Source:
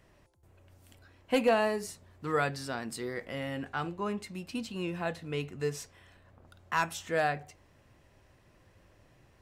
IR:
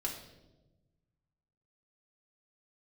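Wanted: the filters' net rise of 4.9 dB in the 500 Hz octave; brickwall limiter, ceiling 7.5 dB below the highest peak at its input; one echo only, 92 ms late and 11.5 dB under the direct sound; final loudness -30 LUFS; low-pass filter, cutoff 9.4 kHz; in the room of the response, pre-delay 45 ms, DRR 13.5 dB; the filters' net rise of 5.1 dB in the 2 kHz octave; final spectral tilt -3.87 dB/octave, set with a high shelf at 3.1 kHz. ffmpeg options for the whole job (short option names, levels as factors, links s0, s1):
-filter_complex "[0:a]lowpass=9400,equalizer=f=500:t=o:g=5.5,equalizer=f=2000:t=o:g=7.5,highshelf=f=3100:g=-3.5,alimiter=limit=0.126:level=0:latency=1,aecho=1:1:92:0.266,asplit=2[s0][s1];[1:a]atrim=start_sample=2205,adelay=45[s2];[s1][s2]afir=irnorm=-1:irlink=0,volume=0.178[s3];[s0][s3]amix=inputs=2:normalize=0,volume=1.19"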